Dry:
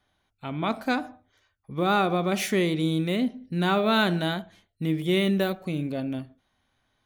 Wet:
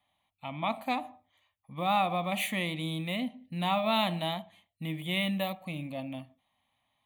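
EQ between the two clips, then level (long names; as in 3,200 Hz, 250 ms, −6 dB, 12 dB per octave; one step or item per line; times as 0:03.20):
high-pass filter 260 Hz 6 dB per octave
phaser with its sweep stopped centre 1,500 Hz, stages 6
0.0 dB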